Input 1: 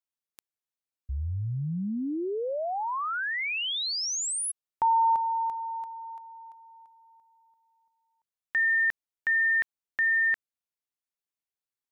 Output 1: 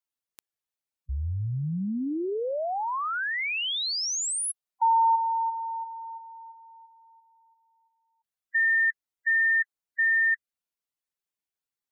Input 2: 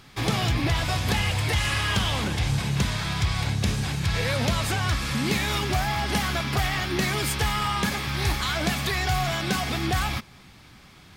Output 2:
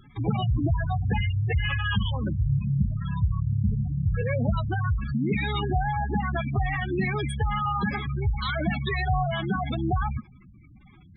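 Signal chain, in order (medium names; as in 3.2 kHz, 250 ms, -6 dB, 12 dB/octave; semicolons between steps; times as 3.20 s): spectral gate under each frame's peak -10 dB strong; trim +1.5 dB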